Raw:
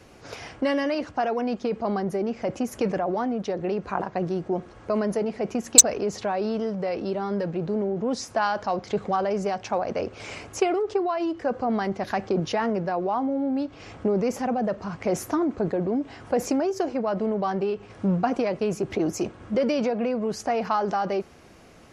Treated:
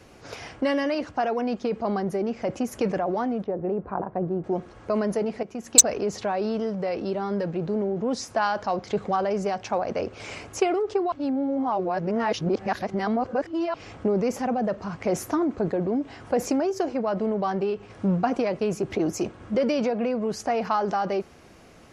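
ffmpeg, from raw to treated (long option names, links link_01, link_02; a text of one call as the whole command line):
ffmpeg -i in.wav -filter_complex "[0:a]asettb=1/sr,asplit=3[link_01][link_02][link_03];[link_01]atrim=end=3.444[link_04];[link_02]atrim=start=3.44:end=4.44,asetpts=PTS-STARTPTS,afade=type=in:duration=0.004:curve=qsin,afade=type=out:start_time=0.996:duration=0.004:curve=qsin,lowpass=1000[link_05];[link_03]atrim=start=4.436[link_06];[link_04][link_05]acrossfade=duration=0.004:curve1=hsin:curve2=qsin[link_07];[link_07][link_06]acrossfade=duration=0.004:curve1=qsin:curve2=hsin,asplit=4[link_08][link_09][link_10][link_11];[link_08]atrim=end=5.43,asetpts=PTS-STARTPTS,afade=type=out:start_time=5.426:duration=0.004:curve=hsin:silence=0.223872[link_12];[link_09]atrim=start=5.43:end=11.122,asetpts=PTS-STARTPTS,afade=type=in:duration=0.46:silence=0.223872[link_13];[link_10]atrim=start=11.118:end=13.742,asetpts=PTS-STARTPTS,areverse[link_14];[link_11]atrim=start=13.738[link_15];[link_12][link_13]concat=n=2:v=0:a=1[link_16];[link_16][link_14]acrossfade=duration=0.004:curve1=hsin:curve2=hsin[link_17];[link_17][link_15]acrossfade=duration=0.004:curve1=hsin:curve2=hsin" out.wav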